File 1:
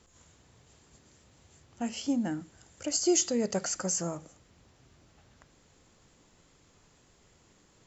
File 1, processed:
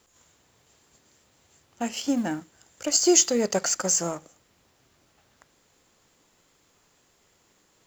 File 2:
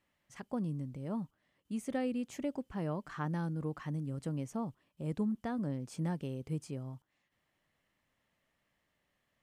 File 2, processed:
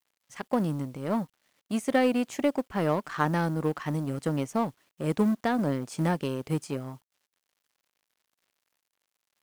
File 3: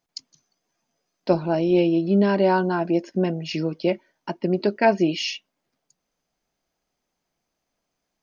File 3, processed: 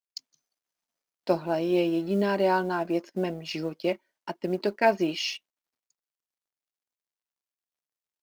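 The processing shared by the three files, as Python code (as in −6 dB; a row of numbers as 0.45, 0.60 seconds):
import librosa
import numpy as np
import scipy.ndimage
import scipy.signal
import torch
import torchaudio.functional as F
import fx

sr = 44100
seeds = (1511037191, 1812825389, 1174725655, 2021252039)

y = fx.law_mismatch(x, sr, coded='A')
y = fx.low_shelf(y, sr, hz=230.0, db=-10.5)
y = y * 10.0 ** (-30 / 20.0) / np.sqrt(np.mean(np.square(y)))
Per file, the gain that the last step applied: +9.5, +16.0, −2.0 decibels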